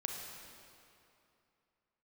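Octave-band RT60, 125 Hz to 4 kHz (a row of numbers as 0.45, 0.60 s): 2.8, 2.8, 2.7, 2.8, 2.4, 2.1 s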